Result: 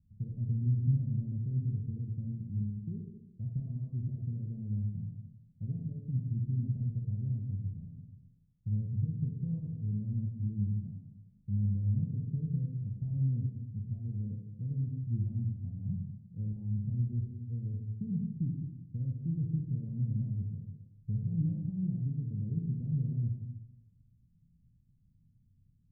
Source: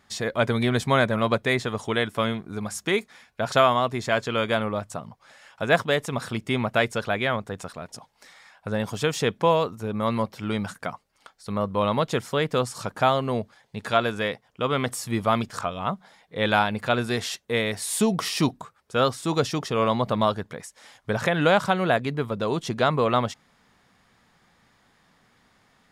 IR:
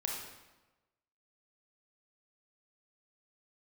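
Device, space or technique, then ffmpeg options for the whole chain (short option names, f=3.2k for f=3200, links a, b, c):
club heard from the street: -filter_complex "[0:a]alimiter=limit=-15.5dB:level=0:latency=1:release=114,lowpass=f=150:w=0.5412,lowpass=f=150:w=1.3066[a];[1:a]atrim=start_sample=2205[b];[a][b]afir=irnorm=-1:irlink=0,volume=3dB"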